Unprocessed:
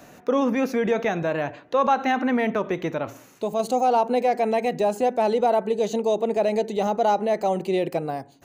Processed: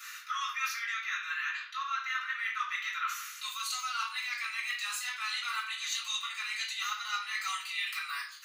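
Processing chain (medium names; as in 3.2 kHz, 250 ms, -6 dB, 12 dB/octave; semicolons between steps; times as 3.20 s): steep high-pass 1.2 kHz 72 dB/octave; reverse; compression 10:1, threshold -42 dBFS, peak gain reduction 17 dB; reverse; reverberation RT60 0.50 s, pre-delay 3 ms, DRR -7.5 dB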